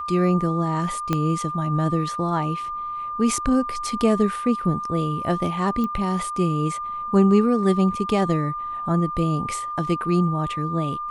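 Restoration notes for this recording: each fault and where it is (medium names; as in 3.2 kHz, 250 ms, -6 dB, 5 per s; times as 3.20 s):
whine 1.2 kHz -27 dBFS
1.13 s: pop -9 dBFS
5.84 s: pop -16 dBFS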